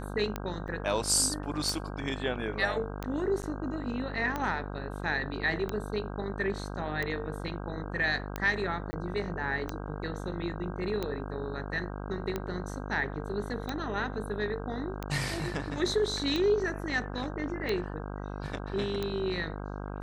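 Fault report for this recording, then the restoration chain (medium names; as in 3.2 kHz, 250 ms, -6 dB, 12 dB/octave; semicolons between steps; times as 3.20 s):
buzz 50 Hz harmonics 32 -38 dBFS
tick 45 rpm -18 dBFS
0.68–0.69 s: dropout 6.2 ms
3.42–3.43 s: dropout 8.8 ms
8.91–8.93 s: dropout 20 ms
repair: de-click; de-hum 50 Hz, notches 32; interpolate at 0.68 s, 6.2 ms; interpolate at 3.42 s, 8.8 ms; interpolate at 8.91 s, 20 ms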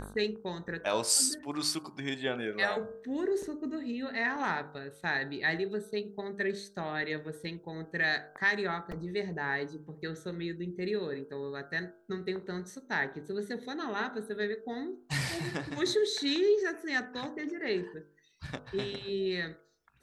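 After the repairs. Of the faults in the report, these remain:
nothing left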